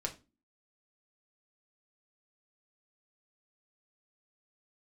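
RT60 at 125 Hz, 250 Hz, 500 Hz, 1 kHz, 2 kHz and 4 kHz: 0.35 s, 0.55 s, 0.30 s, 0.25 s, 0.25 s, 0.25 s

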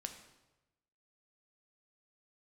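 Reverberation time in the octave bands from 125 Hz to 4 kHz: 1.3 s, 1.0 s, 1.1 s, 1.0 s, 0.90 s, 0.85 s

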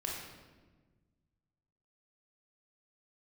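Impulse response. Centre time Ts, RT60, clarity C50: 66 ms, 1.4 s, 1.0 dB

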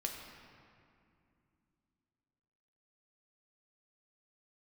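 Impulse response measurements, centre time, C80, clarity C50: 70 ms, 4.5 dB, 3.5 dB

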